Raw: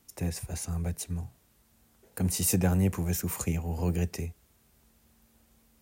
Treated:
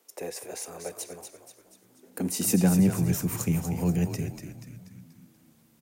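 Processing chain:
echo with shifted repeats 241 ms, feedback 48%, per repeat −68 Hz, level −7 dB
high-pass filter sweep 460 Hz → 140 Hz, 0:01.53–0:03.09

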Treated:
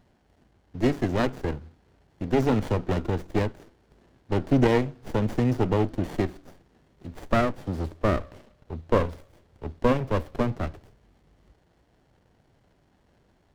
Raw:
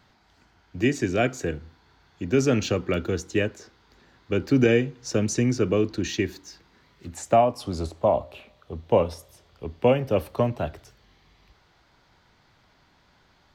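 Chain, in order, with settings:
windowed peak hold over 33 samples

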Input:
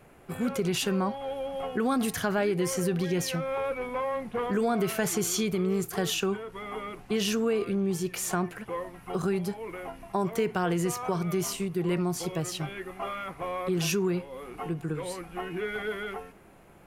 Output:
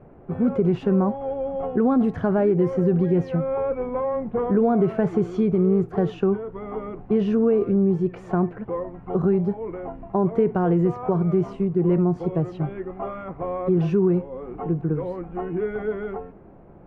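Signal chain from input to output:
Bessel low-pass filter 610 Hz, order 2
level +9 dB

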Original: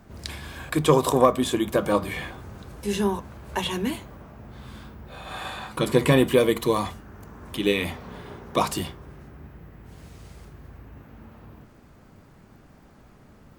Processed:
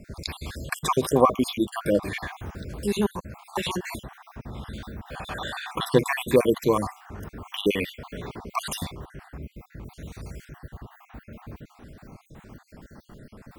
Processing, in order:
time-frequency cells dropped at random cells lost 51%
in parallel at +2 dB: downward compressor, threshold −40 dBFS, peak gain reduction 25 dB

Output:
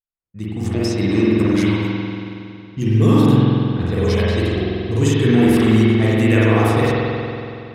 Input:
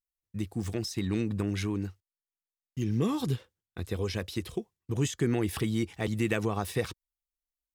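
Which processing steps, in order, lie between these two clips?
low-pass that shuts in the quiet parts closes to 1,400 Hz, open at −27.5 dBFS
automatic gain control gain up to 14 dB
spring reverb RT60 2.7 s, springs 46 ms, chirp 55 ms, DRR −8 dB
level −6 dB

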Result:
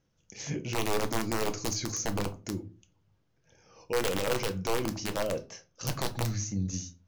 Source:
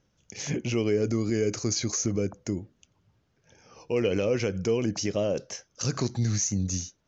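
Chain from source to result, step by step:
0:04.71–0:06.73: Bessel low-pass filter 5,100 Hz, order 2
wrap-around overflow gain 18 dB
convolution reverb RT60 0.35 s, pre-delay 6 ms, DRR 7 dB
level −5.5 dB

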